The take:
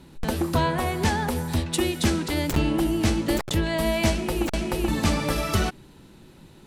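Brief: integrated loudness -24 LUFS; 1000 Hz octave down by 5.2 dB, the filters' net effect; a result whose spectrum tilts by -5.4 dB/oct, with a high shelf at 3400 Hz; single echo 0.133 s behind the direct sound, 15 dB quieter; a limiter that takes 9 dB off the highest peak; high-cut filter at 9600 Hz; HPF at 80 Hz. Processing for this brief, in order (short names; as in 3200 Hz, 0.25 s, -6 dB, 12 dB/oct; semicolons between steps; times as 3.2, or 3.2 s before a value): HPF 80 Hz; LPF 9600 Hz; bell 1000 Hz -6 dB; high shelf 3400 Hz -6.5 dB; limiter -19.5 dBFS; echo 0.133 s -15 dB; gain +5 dB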